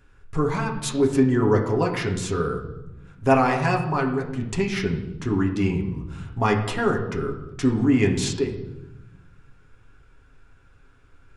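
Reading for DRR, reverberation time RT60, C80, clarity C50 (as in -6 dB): 0.0 dB, 1.0 s, 10.0 dB, 8.5 dB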